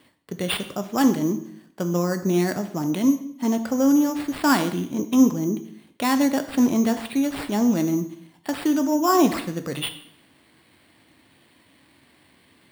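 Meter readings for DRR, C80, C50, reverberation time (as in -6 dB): 8.0 dB, 14.5 dB, 12.0 dB, 0.65 s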